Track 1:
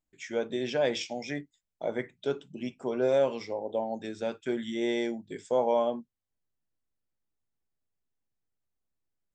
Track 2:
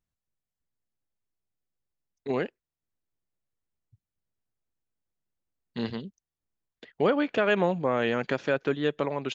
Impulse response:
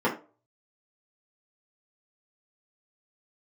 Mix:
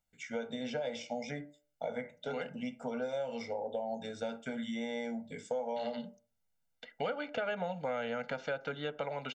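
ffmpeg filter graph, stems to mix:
-filter_complex "[0:a]acompressor=threshold=-29dB:ratio=6,volume=-4dB,asplit=3[link_01][link_02][link_03];[link_02]volume=-18.5dB[link_04];[1:a]lowshelf=frequency=430:gain=-11,volume=-2dB,asplit=2[link_05][link_06];[link_06]volume=-24dB[link_07];[link_03]apad=whole_len=411896[link_08];[link_05][link_08]sidechaincompress=threshold=-42dB:ratio=8:attack=16:release=312[link_09];[2:a]atrim=start_sample=2205[link_10];[link_04][link_07]amix=inputs=2:normalize=0[link_11];[link_11][link_10]afir=irnorm=-1:irlink=0[link_12];[link_01][link_09][link_12]amix=inputs=3:normalize=0,aecho=1:1:1.4:0.99,acrossover=split=680|1800[link_13][link_14][link_15];[link_13]acompressor=threshold=-36dB:ratio=4[link_16];[link_14]acompressor=threshold=-44dB:ratio=4[link_17];[link_15]acompressor=threshold=-47dB:ratio=4[link_18];[link_16][link_17][link_18]amix=inputs=3:normalize=0"

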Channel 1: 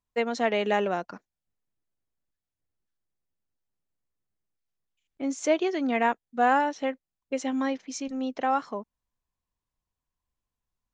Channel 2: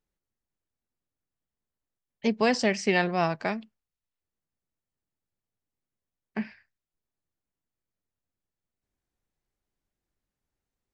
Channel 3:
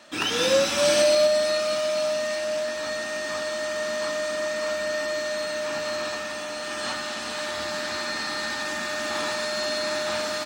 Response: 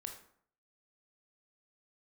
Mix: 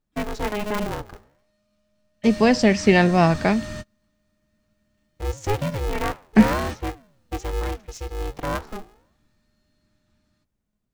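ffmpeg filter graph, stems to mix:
-filter_complex "[0:a]flanger=delay=8.4:depth=10:regen=88:speed=1.3:shape=triangular,aeval=exprs='val(0)*sgn(sin(2*PI*210*n/s))':channel_layout=same,volume=0.5dB[link_01];[1:a]dynaudnorm=framelen=400:gausssize=13:maxgain=16.5dB,volume=-2dB,asplit=2[link_02][link_03];[2:a]asoftclip=type=hard:threshold=-25dB,asubboost=boost=11:cutoff=170,volume=-5.5dB[link_04];[link_03]apad=whole_len=460893[link_05];[link_04][link_05]sidechaingate=range=-39dB:threshold=-54dB:ratio=16:detection=peak[link_06];[link_01][link_02][link_06]amix=inputs=3:normalize=0,lowshelf=frequency=290:gain=10"

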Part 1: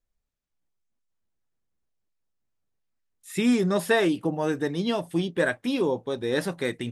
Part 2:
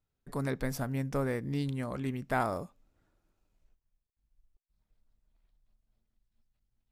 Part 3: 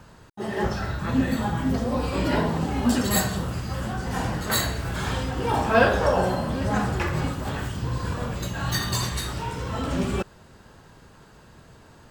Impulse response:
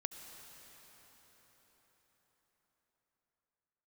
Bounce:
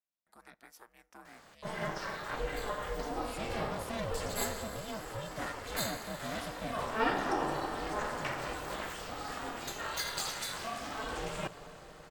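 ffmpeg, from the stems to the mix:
-filter_complex "[0:a]aecho=1:1:2.4:0.65,asoftclip=type=tanh:threshold=-24dB,volume=-9.5dB,asplit=2[link_01][link_02];[1:a]highpass=610,volume=-12dB,asplit=2[link_03][link_04];[link_04]volume=-22dB[link_05];[2:a]adelay=1250,volume=-2.5dB,asplit=2[link_06][link_07];[link_07]volume=-6dB[link_08];[link_02]apad=whole_len=588868[link_09];[link_06][link_09]sidechaincompress=threshold=-55dB:ratio=8:attack=16:release=324[link_10];[link_03][link_10]amix=inputs=2:normalize=0,highpass=frequency=500:poles=1,acompressor=threshold=-36dB:ratio=6,volume=0dB[link_11];[3:a]atrim=start_sample=2205[link_12];[link_05][link_08]amix=inputs=2:normalize=0[link_13];[link_13][link_12]afir=irnorm=-1:irlink=0[link_14];[link_01][link_11][link_14]amix=inputs=3:normalize=0,highpass=frequency=240:width=0.5412,highpass=frequency=240:width=1.3066,aeval=exprs='val(0)*sin(2*PI*220*n/s)':channel_layout=same"

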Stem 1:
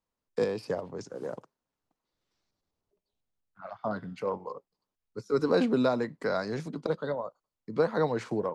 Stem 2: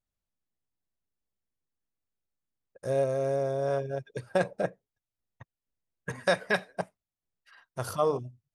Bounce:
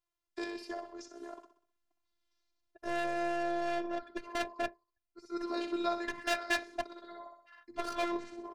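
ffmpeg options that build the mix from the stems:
ffmpeg -i stem1.wav -i stem2.wav -filter_complex "[0:a]lowshelf=frequency=220:gain=-9.5,volume=-2.5dB,asplit=2[link_01][link_02];[link_02]volume=-10.5dB[link_03];[1:a]dynaudnorm=framelen=250:gausssize=7:maxgain=8dB,asoftclip=type=hard:threshold=-20.5dB,adynamicsmooth=sensitivity=6.5:basefreq=2000,volume=-4.5dB,asplit=2[link_04][link_05];[link_05]apad=whole_len=376809[link_06];[link_01][link_06]sidechaincompress=threshold=-39dB:ratio=8:attack=16:release=1390[link_07];[link_03]aecho=0:1:63|126|189|252|315|378:1|0.44|0.194|0.0852|0.0375|0.0165[link_08];[link_07][link_04][link_08]amix=inputs=3:normalize=0,equalizer=frequency=3300:width_type=o:width=2.4:gain=4.5,afftfilt=real='hypot(re,im)*cos(PI*b)':imag='0':win_size=512:overlap=0.75" out.wav

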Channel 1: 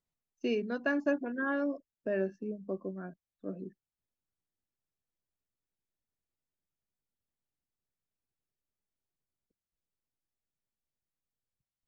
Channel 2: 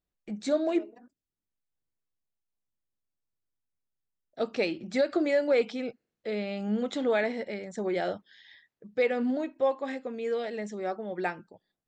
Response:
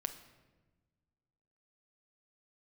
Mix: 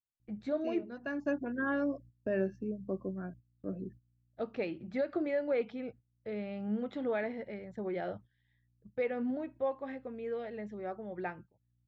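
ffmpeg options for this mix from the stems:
-filter_complex "[0:a]aeval=exprs='val(0)+0.000708*(sin(2*PI*60*n/s)+sin(2*PI*2*60*n/s)/2+sin(2*PI*3*60*n/s)/3+sin(2*PI*4*60*n/s)/4+sin(2*PI*5*60*n/s)/5)':channel_layout=same,adelay=200,volume=-1dB[link_01];[1:a]lowpass=2400,volume=-7.5dB,asplit=2[link_02][link_03];[link_03]apad=whole_len=532712[link_04];[link_01][link_04]sidechaincompress=threshold=-41dB:ratio=8:attack=6.5:release=756[link_05];[link_05][link_02]amix=inputs=2:normalize=0,agate=range=-15dB:threshold=-53dB:ratio=16:detection=peak,equalizer=frequency=110:width=1.8:gain=14.5"

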